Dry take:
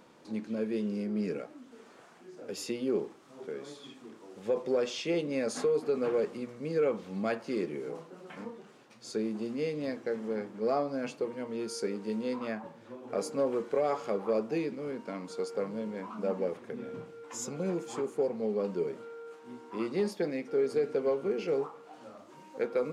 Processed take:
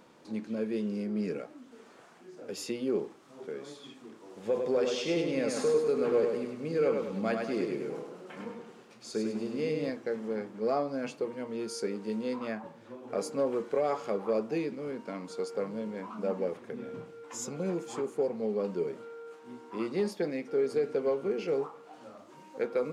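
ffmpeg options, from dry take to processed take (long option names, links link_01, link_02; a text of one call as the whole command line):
ffmpeg -i in.wav -filter_complex "[0:a]asettb=1/sr,asplit=3[link_01][link_02][link_03];[link_01]atrim=end=4.164[link_04];[link_02]atrim=start=4.16:end=9.9,asetpts=PTS-STARTPTS,afade=type=in:duration=0.004:curve=qsin,afade=type=out:start_time=5.736:duration=0.004:curve=qsin,aecho=1:1:101|202|303|404|505|606:0.596|0.268|0.121|0.0543|0.0244|0.011,atrim=end_sample=253134[link_05];[link_03]atrim=start=9.896[link_06];[link_04][link_05]acrossfade=duration=0.004:curve1=hsin:curve2=qsin[link_07];[link_07][link_06]acrossfade=duration=0.004:curve1=qsin:curve2=hsin" out.wav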